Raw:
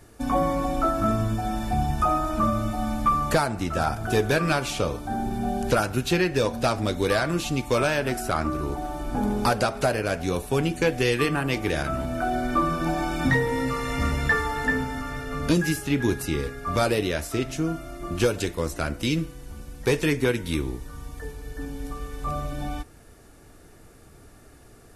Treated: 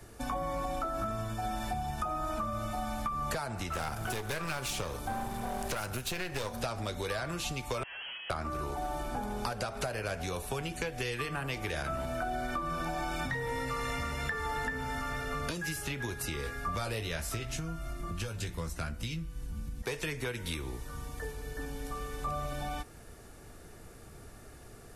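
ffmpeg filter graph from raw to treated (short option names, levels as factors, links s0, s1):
-filter_complex "[0:a]asettb=1/sr,asplit=3[s0][s1][s2];[s0]atrim=end=3.724[s3];[s1]atrim=start=3.72:end=6.62,asetpts=PTS-STARTPTS,afade=t=in:d=0.004:c=qsin,afade=t=out:st=2.896:d=0.004:c=qsin,bandreject=f=680:w=14,aeval=exprs='clip(val(0),-1,0.0282)':c=same,highshelf=f=7900:g=7[s4];[s2]atrim=start=6.616[s5];[s3][s4]acrossfade=d=0.004:c1=hsin:c2=qsin[s6];[s6][s5]acrossfade=d=0.004:c1=qsin:c2=hsin,asettb=1/sr,asplit=3[s7][s8][s9];[s7]atrim=end=7.834[s10];[s8]atrim=start=7.83:end=8.3,asetpts=PTS-STARTPTS,afade=t=in:d=0.004:c=qsin,afade=t=out:st=0.466:d=0.004:c=qsin,highpass=120,aeval=exprs='(tanh(112*val(0)+0.2)-tanh(0.2))/112':c=same,lowpass=f=2800:t=q:w=0.5098,lowpass=f=2800:t=q:w=0.6013,lowpass=f=2800:t=q:w=0.9,lowpass=f=2800:t=q:w=2.563,afreqshift=-3300[s11];[s9]atrim=start=8.296[s12];[s10][s11]acrossfade=d=0.004:c1=hsin:c2=qsin[s13];[s13][s12]acrossfade=d=0.004:c1=qsin:c2=hsin,asettb=1/sr,asplit=3[s14][s15][s16];[s14]atrim=end=16.434[s17];[s15]atrim=start=16.43:end=19.82,asetpts=PTS-STARTPTS,afade=t=in:d=0.004:c=qsin,afade=t=out:st=3.386:d=0.004:c=qsin,asubboost=boost=10:cutoff=170,asplit=2[s18][s19];[s19]adelay=18,volume=0.447[s20];[s18][s20]amix=inputs=2:normalize=0,atrim=end_sample=149499[s21];[s16]atrim=start=19.816[s22];[s17][s21]acrossfade=d=0.004:c1=hsin:c2=qsin[s23];[s23][s22]acrossfade=d=0.004:c1=qsin:c2=hsin,acompressor=threshold=0.0501:ratio=6,equalizer=f=290:w=5.8:g=-5.5,acrossover=split=130|510[s24][s25][s26];[s24]acompressor=threshold=0.0112:ratio=4[s27];[s25]acompressor=threshold=0.00631:ratio=4[s28];[s26]acompressor=threshold=0.0224:ratio=4[s29];[s27][s28][s29]amix=inputs=3:normalize=0"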